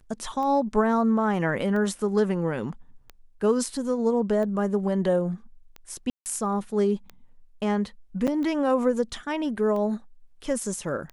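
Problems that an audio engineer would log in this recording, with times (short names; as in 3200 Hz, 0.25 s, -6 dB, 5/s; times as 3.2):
tick 45 rpm -24 dBFS
6.1–6.26 gap 0.159 s
8.27–8.28 gap 7.1 ms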